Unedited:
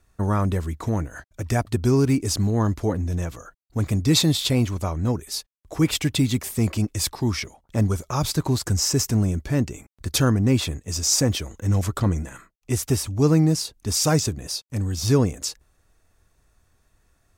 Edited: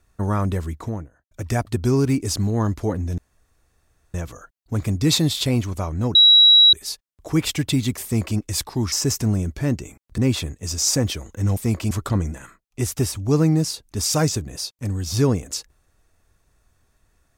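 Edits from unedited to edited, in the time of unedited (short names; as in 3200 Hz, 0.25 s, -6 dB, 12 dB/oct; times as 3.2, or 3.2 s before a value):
0.65–1.31 studio fade out
3.18 insert room tone 0.96 s
5.19 add tone 3880 Hz -8 dBFS 0.58 s
6.5–6.84 copy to 11.82
7.38–8.81 cut
10.07–10.43 cut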